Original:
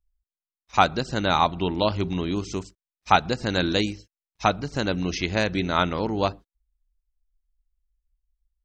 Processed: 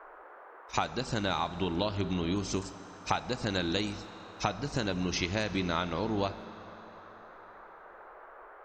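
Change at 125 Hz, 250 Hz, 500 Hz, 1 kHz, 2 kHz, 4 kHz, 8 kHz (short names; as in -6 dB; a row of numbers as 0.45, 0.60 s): -6.0, -6.0, -8.0, -10.5, -8.0, -7.0, -1.5 dB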